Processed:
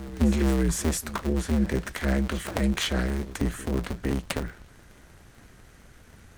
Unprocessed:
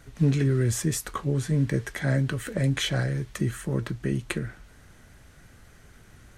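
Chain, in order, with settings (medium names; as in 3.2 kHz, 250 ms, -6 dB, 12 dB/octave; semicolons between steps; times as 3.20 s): cycle switcher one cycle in 2, inverted; reverse echo 462 ms -16 dB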